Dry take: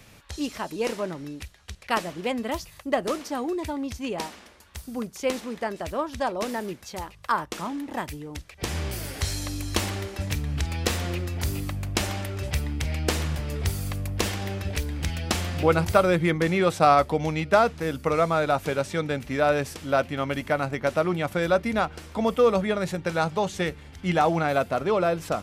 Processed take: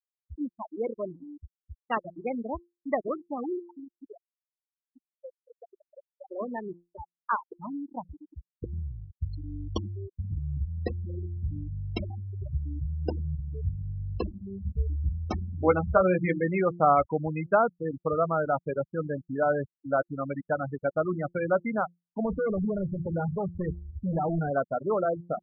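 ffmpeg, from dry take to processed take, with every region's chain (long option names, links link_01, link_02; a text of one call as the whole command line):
ffmpeg -i in.wav -filter_complex "[0:a]asettb=1/sr,asplit=3[link_01][link_02][link_03];[link_01]atrim=end=3.594[link_04];[link_02]atrim=start=3.59:end=6.31,asetpts=PTS-STARTPTS,afade=type=in:duration=0.004:curve=qsin,afade=type=out:start_time=2.716:duration=0.004:curve=qsin,highpass=frequency=440:poles=1,acompressor=threshold=-33dB:ratio=8:attack=3.2:release=140:knee=1:detection=peak,asplit=2[link_05][link_06];[link_06]adelay=158,lowpass=frequency=970:poles=1,volume=-20.5dB,asplit=2[link_07][link_08];[link_08]adelay=158,lowpass=frequency=970:poles=1,volume=0.54,asplit=2[link_09][link_10];[link_10]adelay=158,lowpass=frequency=970:poles=1,volume=0.54,asplit=2[link_11][link_12];[link_12]adelay=158,lowpass=frequency=970:poles=1,volume=0.54[link_13];[link_05][link_07][link_09][link_11][link_13]amix=inputs=5:normalize=0,atrim=end_sample=119952[link_14];[link_03]atrim=start=6.306[link_15];[link_04][link_14]acrossfade=duration=0.004:curve1=hsin:curve2=qsin[link_16];[link_16][link_15]acrossfade=duration=0.004:curve1=qsin:curve2=hsin,asettb=1/sr,asplit=3[link_17][link_18][link_19];[link_17]atrim=end=14.164[link_20];[link_18]atrim=start=14.16:end=16.44,asetpts=PTS-STARTPTS,afade=type=in:duration=0.004:curve=qsin,afade=type=out:start_time=2.276:duration=0.004:curve=qsin,lowshelf=frequency=80:gain=5.5,bandreject=frequency=50:width_type=h:width=6,bandreject=frequency=100:width_type=h:width=6,bandreject=frequency=150:width_type=h:width=6,bandreject=frequency=200:width_type=h:width=6,bandreject=frequency=250:width_type=h:width=6,bandreject=frequency=300:width_type=h:width=6,bandreject=frequency=350:width_type=h:width=6,bandreject=frequency=400:width_type=h:width=6,asplit=2[link_21][link_22];[link_22]adelay=16,volume=-6dB[link_23];[link_21][link_23]amix=inputs=2:normalize=0,atrim=end_sample=100548[link_24];[link_19]atrim=start=16.436[link_25];[link_20][link_24]acrossfade=duration=0.004:curve1=hsin:curve2=qsin[link_26];[link_26][link_25]acrossfade=duration=0.004:curve1=qsin:curve2=hsin,asettb=1/sr,asplit=3[link_27][link_28][link_29];[link_27]atrim=end=22.254[link_30];[link_28]atrim=start=22.25:end=24.51,asetpts=PTS-STARTPTS,afade=type=in:duration=0.004:curve=qsin,afade=type=out:start_time=2.256:duration=0.004:curve=qsin,lowshelf=frequency=280:gain=11,asoftclip=type=hard:threshold=-22dB[link_31];[link_29]atrim=start=24.506[link_32];[link_30][link_31]acrossfade=duration=0.004:curve1=hsin:curve2=qsin[link_33];[link_33][link_32]acrossfade=duration=0.004:curve1=qsin:curve2=hsin,afftfilt=real='re*gte(hypot(re,im),0.141)':imag='im*gte(hypot(re,im),0.141)':win_size=1024:overlap=0.75,bandreject=frequency=173.3:width_type=h:width=4,bandreject=frequency=346.6:width_type=h:width=4,anlmdn=0.0398,volume=-3dB" out.wav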